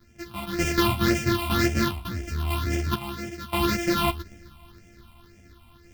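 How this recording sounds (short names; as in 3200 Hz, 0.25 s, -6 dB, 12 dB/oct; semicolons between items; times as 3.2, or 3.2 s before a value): a buzz of ramps at a fixed pitch in blocks of 128 samples; phasing stages 6, 1.9 Hz, lowest notch 440–1100 Hz; random-step tremolo 1.7 Hz, depth 80%; a shimmering, thickened sound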